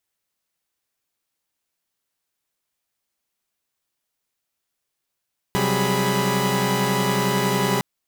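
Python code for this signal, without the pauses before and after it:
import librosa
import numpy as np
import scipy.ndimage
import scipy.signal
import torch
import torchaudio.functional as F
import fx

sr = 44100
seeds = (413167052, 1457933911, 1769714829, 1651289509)

y = fx.chord(sr, length_s=2.26, notes=(48, 54, 55, 68, 83), wave='saw', level_db=-23.0)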